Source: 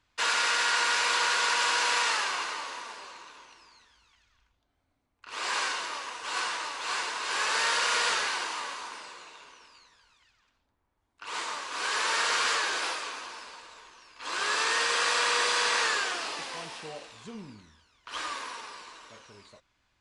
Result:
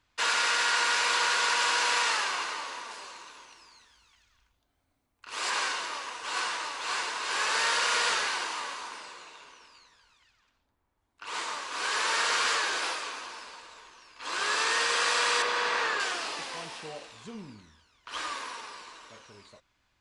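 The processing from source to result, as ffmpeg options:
-filter_complex "[0:a]asettb=1/sr,asplit=3[a][b][c];[a]atrim=end=2.914[d];[b]atrim=start=2.91:end=5.5,asetpts=PTS-STARTPTS,afade=t=in:d=0.004:c=qsin,afade=t=out:st=2.586:d=0.004:c=qsin,highshelf=f=7.1k:g=8.5[e];[c]atrim=start=5.496[f];[d][e]acrossfade=d=0.004:c1=hsin:c2=qsin[g];[g][f]acrossfade=d=0.004:c1=qsin:c2=hsin,asettb=1/sr,asplit=3[h][i][j];[h]atrim=end=15.424[k];[i]atrim=start=15.42:end=16,asetpts=PTS-STARTPTS,afade=t=in:d=0.004:c=qsin,afade=t=out:st=0.576:d=0.004:c=qsin,aemphasis=mode=reproduction:type=75fm[l];[j]atrim=start=15.996[m];[k][l]acrossfade=d=0.004:c1=hsin:c2=qsin[n];[n][m]acrossfade=d=0.004:c1=qsin:c2=hsin"

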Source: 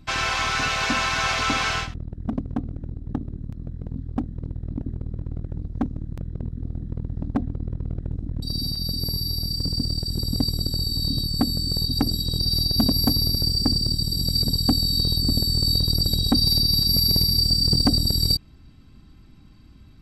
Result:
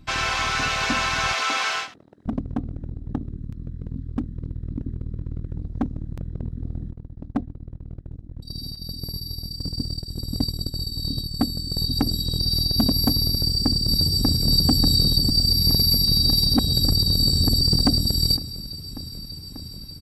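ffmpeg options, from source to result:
-filter_complex "[0:a]asettb=1/sr,asplit=3[a][b][c];[a]atrim=end=1.334[d];[b]atrim=start=1.33:end=2.26,asetpts=PTS-STARTPTS,afade=t=in:d=0.004:c=qsin,afade=t=out:st=0.926:d=0.004:c=qsin,highpass=470[e];[c]atrim=start=2.256[f];[d][e]acrossfade=d=0.004:c1=hsin:c2=qsin[g];[g][f]acrossfade=d=0.004:c1=qsin:c2=hsin,asettb=1/sr,asplit=3[h][i][j];[h]atrim=end=3.274[k];[i]atrim=start=3.27:end=5.57,asetpts=PTS-STARTPTS,afade=t=in:d=0.004:c=qsin,afade=t=out:st=2.296:d=0.004:c=qsin,equalizer=f=720:t=o:w=0.68:g=-10[l];[j]atrim=start=5.566[m];[k][l]acrossfade=d=0.004:c1=hsin:c2=qsin[n];[n][m]acrossfade=d=0.004:c1=qsin:c2=hsin,asettb=1/sr,asplit=3[o][p][q];[o]atrim=end=6.914[r];[p]atrim=start=6.91:end=11.77,asetpts=PTS-STARTPTS,afade=t=in:d=0.004:c=qsin,afade=t=out:st=4.856:d=0.004:c=qsin,agate=range=-33dB:threshold=-21dB:ratio=3:release=100:detection=peak[s];[q]atrim=start=11.766[t];[r][s]acrossfade=d=0.004:c1=hsin:c2=qsin[u];[u][t]acrossfade=d=0.004:c1=qsin:c2=hsin,asplit=2[v][w];[w]afade=t=in:st=13.29:d=0.01,afade=t=out:st=14.47:d=0.01,aecho=0:1:590|1180|1770|2360|2950|3540|4130|4720|5310|5900|6490|7080:1|0.8|0.64|0.512|0.4096|0.32768|0.262144|0.209715|0.167772|0.134218|0.107374|0.0858993[x];[v][x]amix=inputs=2:normalize=0,asplit=3[y][z][aa];[y]atrim=end=15.302[ab];[z]atrim=start=15.298:end=17.612,asetpts=PTS-STARTPTS,areverse[ac];[aa]atrim=start=17.608[ad];[ab][ac]acrossfade=d=0.004:c1=hsin:c2=hsin[ae];[ae][ad]acrossfade=d=0.004:c1=hsin:c2=hsin"

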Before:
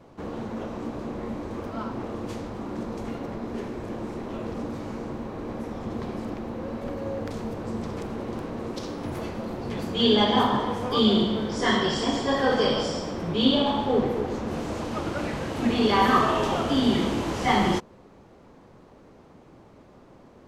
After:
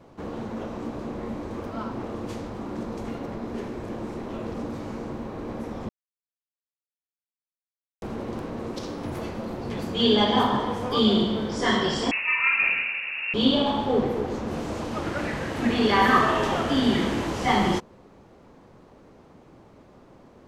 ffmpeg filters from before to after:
-filter_complex "[0:a]asettb=1/sr,asplit=3[a][b][c];[a]atrim=end=12.114[d];[b]atrim=start=12.11:end=13.34,asetpts=PTS-STARTPTS,afade=t=in:d=0.004:c=qsin,afade=t=out:st=1.226:d=0.004:c=qsin,lowpass=f=2.5k:t=q:w=0.5098,lowpass=f=2.5k:t=q:w=0.6013,lowpass=f=2.5k:t=q:w=0.9,lowpass=f=2.5k:t=q:w=2.563,afreqshift=-2900[e];[c]atrim=start=13.336[f];[d][e]acrossfade=d=0.004:c1=hsin:c2=qsin[g];[g][f]acrossfade=d=0.004:c1=qsin:c2=hsin,asettb=1/sr,asplit=3[h][i][j];[h]atrim=end=15.024[k];[i]atrim=start=15.02:end=17.27,asetpts=PTS-STARTPTS,afade=t=in:d=0.004:c=qsin,afade=t=out:st=2.246:d=0.004:c=qsin,equalizer=f=1.8k:t=o:w=0.54:g=6.5[l];[j]atrim=start=17.266[m];[k][l]acrossfade=d=0.004:c1=hsin:c2=qsin[n];[n][m]acrossfade=d=0.004:c1=qsin:c2=hsin,asplit=3[o][p][q];[o]atrim=end=5.89,asetpts=PTS-STARTPTS,afade=t=out:st=5.886:d=0.004:c=hsin[r];[p]atrim=start=5.89:end=8.02,asetpts=PTS-STARTPTS,volume=0[s];[q]atrim=start=8.02,asetpts=PTS-STARTPTS,afade=t=in:d=0.004:c=hsin[t];[r][s][t]concat=n=3:v=0:a=1"

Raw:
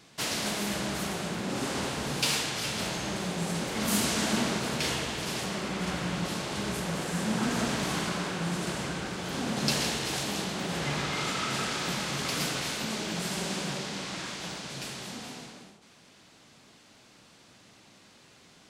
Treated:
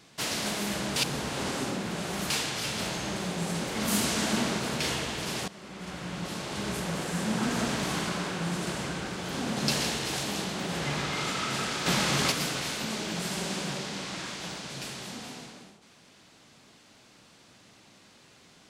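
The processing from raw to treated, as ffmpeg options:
-filter_complex "[0:a]asettb=1/sr,asplit=3[a][b][c];[a]atrim=end=11.864[d];[b]atrim=start=11.86:end=12.32,asetpts=PTS-STARTPTS,afade=t=in:d=0.004:c=qsin,afade=t=out:st=0.456:d=0.004:c=qsin,acontrast=52[e];[c]atrim=start=12.316[f];[d][e]acrossfade=d=0.004:c1=hsin:c2=qsin[g];[g][f]acrossfade=d=0.004:c1=qsin:c2=hsin,asplit=4[h][i][j][k];[h]atrim=end=0.962[l];[i]atrim=start=0.958:end=2.302,asetpts=PTS-STARTPTS,areverse[m];[j]atrim=start=2.298:end=5.48,asetpts=PTS-STARTPTS,afade=t=out:st=3.178:d=0.004:c=hsin:silence=0.149624[n];[k]atrim=start=5.48,asetpts=PTS-STARTPTS,afade=t=in:d=1.25:silence=0.149624[o];[l][m]acrossfade=d=0.004:c1=hsin:c2=hsin[p];[n][o]concat=n=2:v=0:a=1[q];[p][q]acrossfade=d=0.004:c1=hsin:c2=hsin"

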